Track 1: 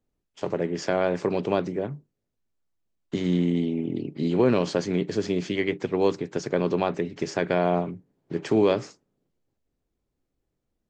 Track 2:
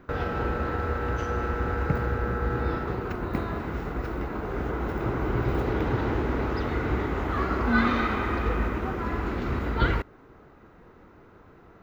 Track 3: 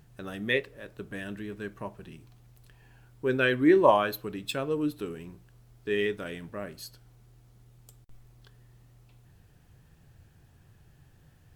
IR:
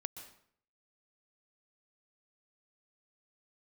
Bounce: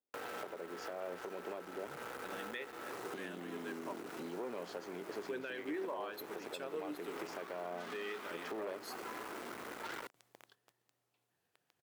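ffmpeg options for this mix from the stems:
-filter_complex "[0:a]highshelf=f=4.4k:g=-12,asoftclip=type=tanh:threshold=-16.5dB,volume=-2dB[a];[1:a]acrusher=bits=6:mix=0:aa=0.000001,aeval=exprs='(tanh(39.8*val(0)+0.6)-tanh(0.6))/39.8':c=same,adelay=50,volume=-1.5dB[b];[2:a]alimiter=limit=-16.5dB:level=0:latency=1:release=282,adelay=2050,volume=-6.5dB,asplit=2[c][d];[d]volume=-15dB[e];[a][b]amix=inputs=2:normalize=0,acompressor=threshold=-38dB:ratio=3,volume=0dB[f];[3:a]atrim=start_sample=2205[g];[e][g]afir=irnorm=-1:irlink=0[h];[c][f][h]amix=inputs=3:normalize=0,agate=range=-9dB:threshold=-59dB:ratio=16:detection=peak,highpass=390,alimiter=level_in=7.5dB:limit=-24dB:level=0:latency=1:release=366,volume=-7.5dB"

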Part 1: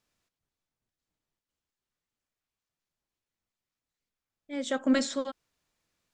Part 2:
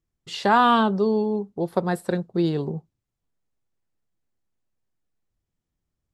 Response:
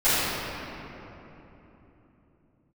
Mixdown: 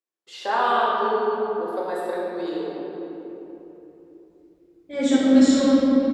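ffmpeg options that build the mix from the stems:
-filter_complex "[0:a]lowshelf=f=350:g=10.5,acrossover=split=460|3000[a][b][c];[b]acompressor=threshold=-32dB:ratio=6[d];[a][d][c]amix=inputs=3:normalize=0,alimiter=limit=-19dB:level=0:latency=1:release=155,adelay=400,volume=-3dB,asplit=2[e][f];[f]volume=-5.5dB[g];[1:a]highpass=f=350:w=0.5412,highpass=f=350:w=1.3066,volume=-11.5dB,asplit=2[h][i];[i]volume=-10dB[j];[2:a]atrim=start_sample=2205[k];[g][j]amix=inputs=2:normalize=0[l];[l][k]afir=irnorm=-1:irlink=0[m];[e][h][m]amix=inputs=3:normalize=0,highpass=53,lowshelf=f=130:g=6"

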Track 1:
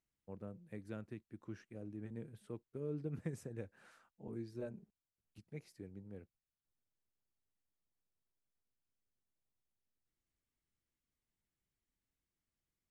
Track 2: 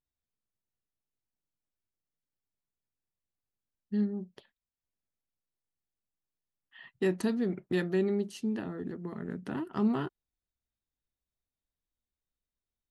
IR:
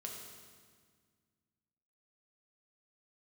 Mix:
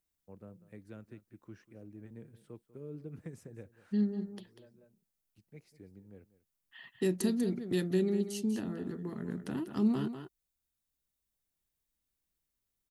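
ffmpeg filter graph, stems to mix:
-filter_complex "[0:a]volume=-2.5dB,asplit=2[a][b];[b]volume=-17.5dB[c];[1:a]highshelf=f=6.4k:g=11.5,volume=0dB,asplit=3[d][e][f];[e]volume=-10.5dB[g];[f]apad=whole_len=568993[h];[a][h]sidechaincompress=threshold=-46dB:ratio=8:attack=16:release=1190[i];[c][g]amix=inputs=2:normalize=0,aecho=0:1:193:1[j];[i][d][j]amix=inputs=3:normalize=0,acrossover=split=440|3000[k][l][m];[l]acompressor=threshold=-52dB:ratio=2[n];[k][n][m]amix=inputs=3:normalize=0"

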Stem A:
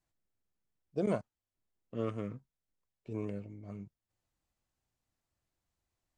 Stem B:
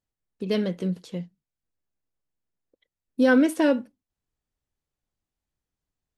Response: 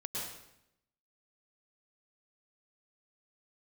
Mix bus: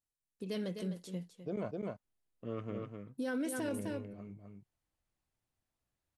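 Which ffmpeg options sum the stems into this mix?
-filter_complex "[0:a]lowpass=4.5k,adelay=500,volume=-3dB,asplit=2[a][b];[b]volume=-5.5dB[c];[1:a]equalizer=f=9.8k:t=o:w=1.2:g=11.5,volume=-11dB,asplit=2[d][e];[e]volume=-10dB[f];[c][f]amix=inputs=2:normalize=0,aecho=0:1:255:1[g];[a][d][g]amix=inputs=3:normalize=0,alimiter=level_in=5.5dB:limit=-24dB:level=0:latency=1:release=21,volume=-5.5dB"

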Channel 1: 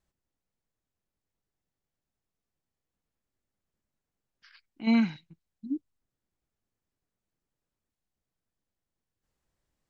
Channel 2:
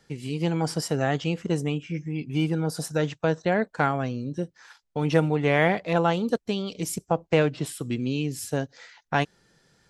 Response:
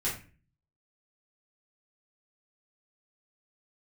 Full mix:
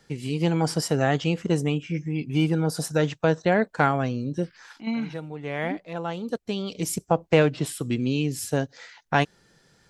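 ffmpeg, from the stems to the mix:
-filter_complex "[0:a]acompressor=threshold=-23dB:ratio=6,volume=-1dB,asplit=2[a][b];[1:a]volume=2.5dB[c];[b]apad=whole_len=436217[d];[c][d]sidechaincompress=threshold=-45dB:ratio=8:attack=49:release=1010[e];[a][e]amix=inputs=2:normalize=0"

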